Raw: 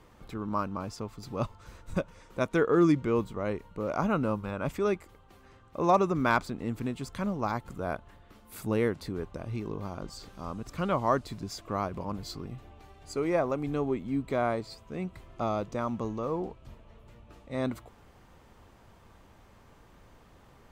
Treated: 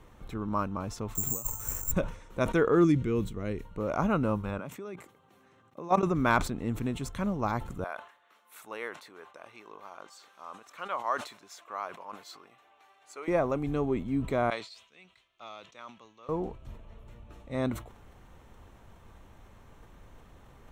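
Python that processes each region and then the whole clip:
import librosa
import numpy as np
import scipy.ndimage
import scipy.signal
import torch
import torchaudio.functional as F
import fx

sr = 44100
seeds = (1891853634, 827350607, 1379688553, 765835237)

y = fx.chain(x, sr, fx.lowpass(hz=3800.0, slope=12),
    fx.over_compress(threshold_db=-39.0, ratio=-0.5),
    fx.resample_bad(factor=6, down='filtered', up='zero_stuff'), at=(1.15, 1.92))
y = fx.chain(y, sr, fx.peak_eq(hz=920.0, db=-12.0, octaves=1.2),
    fx.notch(hz=570.0, q=12.0), at=(2.84, 3.65))
y = fx.chain(y, sr, fx.level_steps(step_db=20),
    fx.highpass(hz=130.0, slope=24), at=(4.58, 6.03))
y = fx.chain(y, sr, fx.highpass(hz=930.0, slope=12),
    fx.high_shelf(hz=3800.0, db=-7.0), at=(7.84, 13.28))
y = fx.chain(y, sr, fx.bandpass_q(hz=3400.0, q=1.5),
    fx.band_widen(depth_pct=40), at=(14.5, 16.29))
y = fx.low_shelf(y, sr, hz=66.0, db=7.5)
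y = fx.notch(y, sr, hz=4800.0, q=6.1)
y = fx.sustainer(y, sr, db_per_s=120.0)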